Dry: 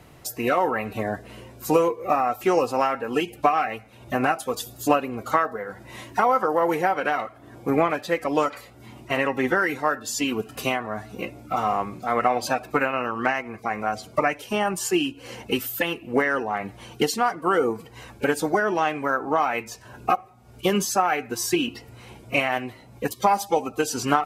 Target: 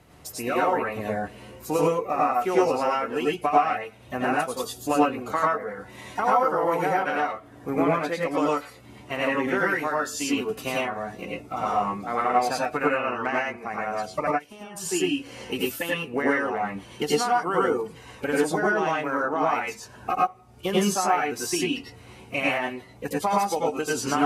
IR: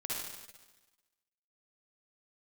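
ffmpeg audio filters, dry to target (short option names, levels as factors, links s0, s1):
-filter_complex "[0:a]asplit=3[s0][s1][s2];[s0]afade=t=out:st=14.26:d=0.02[s3];[s1]acompressor=threshold=0.0126:ratio=6,afade=t=in:st=14.26:d=0.02,afade=t=out:st=14.74:d=0.02[s4];[s2]afade=t=in:st=14.74:d=0.02[s5];[s3][s4][s5]amix=inputs=3:normalize=0[s6];[1:a]atrim=start_sample=2205,atrim=end_sample=3087,asetrate=25578,aresample=44100[s7];[s6][s7]afir=irnorm=-1:irlink=0,volume=0.631"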